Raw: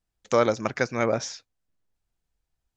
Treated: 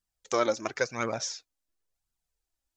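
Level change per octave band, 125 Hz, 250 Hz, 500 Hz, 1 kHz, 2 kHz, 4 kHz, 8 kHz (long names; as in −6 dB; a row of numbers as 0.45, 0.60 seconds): −10.0 dB, −7.0 dB, −5.5 dB, −4.0 dB, −3.5 dB, 0.0 dB, can't be measured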